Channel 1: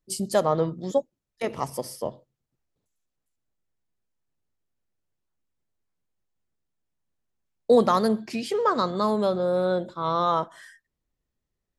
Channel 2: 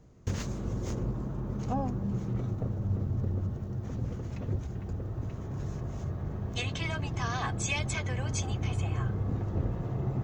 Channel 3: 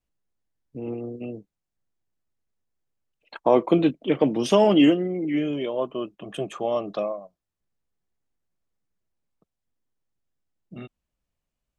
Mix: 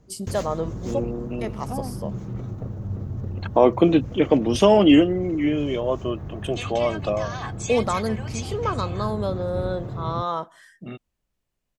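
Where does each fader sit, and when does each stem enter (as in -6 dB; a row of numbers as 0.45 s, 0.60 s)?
-3.5 dB, +0.5 dB, +2.5 dB; 0.00 s, 0.00 s, 0.10 s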